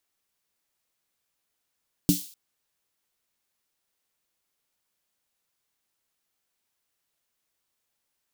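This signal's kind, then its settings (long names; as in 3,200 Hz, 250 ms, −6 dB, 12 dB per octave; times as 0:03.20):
synth snare length 0.25 s, tones 180 Hz, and 290 Hz, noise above 3,400 Hz, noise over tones −9 dB, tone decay 0.17 s, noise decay 0.49 s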